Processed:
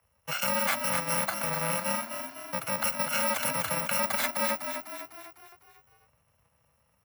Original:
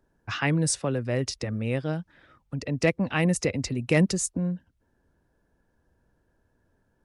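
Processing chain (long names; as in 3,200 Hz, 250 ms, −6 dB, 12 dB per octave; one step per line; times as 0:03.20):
samples in bit-reversed order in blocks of 128 samples
octave-band graphic EQ 250/500/1,000/2,000/8,000 Hz −11/+10/+11/+9/−3 dB
brickwall limiter −13.5 dBFS, peak gain reduction 9.5 dB
echo with shifted repeats 251 ms, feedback 52%, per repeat +36 Hz, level −7 dB
frequency shifter +47 Hz
buffer that repeats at 0:05.49, samples 128, times 10
level −3.5 dB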